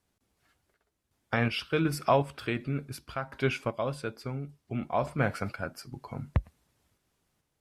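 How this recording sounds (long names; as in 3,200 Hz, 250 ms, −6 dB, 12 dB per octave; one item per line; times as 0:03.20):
sample-and-hold tremolo 2.7 Hz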